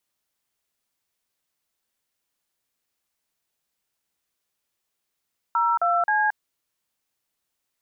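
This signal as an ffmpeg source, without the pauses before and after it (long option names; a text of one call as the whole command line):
ffmpeg -f lavfi -i "aevalsrc='0.0891*clip(min(mod(t,0.265),0.224-mod(t,0.265))/0.002,0,1)*(eq(floor(t/0.265),0)*(sin(2*PI*941*mod(t,0.265))+sin(2*PI*1336*mod(t,0.265)))+eq(floor(t/0.265),1)*(sin(2*PI*697*mod(t,0.265))+sin(2*PI*1336*mod(t,0.265)))+eq(floor(t/0.265),2)*(sin(2*PI*852*mod(t,0.265))+sin(2*PI*1633*mod(t,0.265))))':duration=0.795:sample_rate=44100" out.wav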